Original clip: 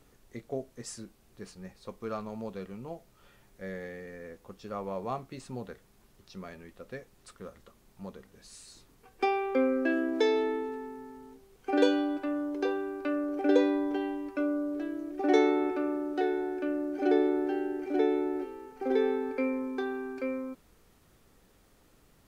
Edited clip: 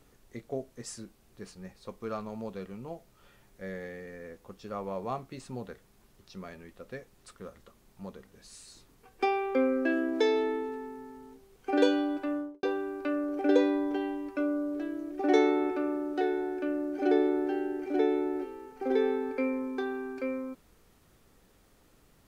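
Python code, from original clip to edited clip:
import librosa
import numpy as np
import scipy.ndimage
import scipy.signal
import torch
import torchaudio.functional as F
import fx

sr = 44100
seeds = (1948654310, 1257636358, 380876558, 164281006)

y = fx.studio_fade_out(x, sr, start_s=12.32, length_s=0.31)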